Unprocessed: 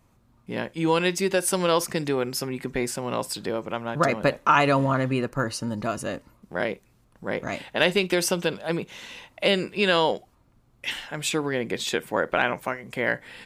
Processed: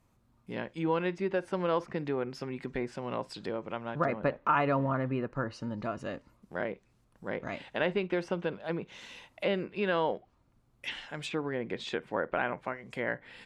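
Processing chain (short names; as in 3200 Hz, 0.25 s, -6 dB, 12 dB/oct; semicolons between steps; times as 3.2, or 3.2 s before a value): treble ducked by the level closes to 1900 Hz, closed at -22.5 dBFS; gain -7 dB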